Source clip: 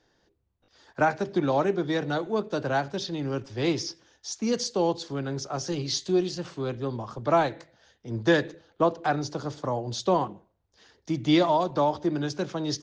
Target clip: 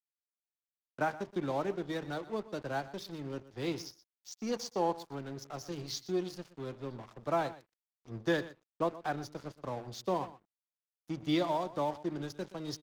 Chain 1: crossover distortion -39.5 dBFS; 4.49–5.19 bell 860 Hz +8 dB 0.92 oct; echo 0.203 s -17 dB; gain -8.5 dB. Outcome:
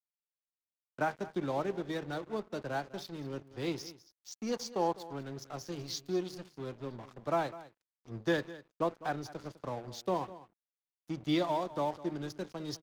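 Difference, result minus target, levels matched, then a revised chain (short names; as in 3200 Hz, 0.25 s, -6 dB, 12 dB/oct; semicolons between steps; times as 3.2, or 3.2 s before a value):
echo 81 ms late
crossover distortion -39.5 dBFS; 4.49–5.19 bell 860 Hz +8 dB 0.92 oct; echo 0.122 s -17 dB; gain -8.5 dB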